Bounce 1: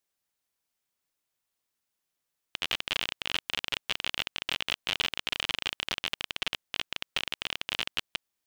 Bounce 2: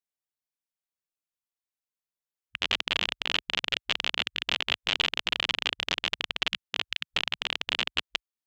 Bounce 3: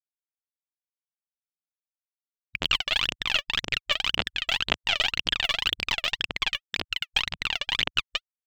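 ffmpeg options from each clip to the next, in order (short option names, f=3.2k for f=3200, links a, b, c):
-af "afwtdn=0.01,volume=3.5dB"
-af "afftfilt=real='re*gte(hypot(re,im),0.002)':imag='im*gte(hypot(re,im),0.002)':win_size=1024:overlap=0.75,aphaser=in_gain=1:out_gain=1:delay=1.8:decay=0.79:speed=1.9:type=triangular,volume=-1.5dB"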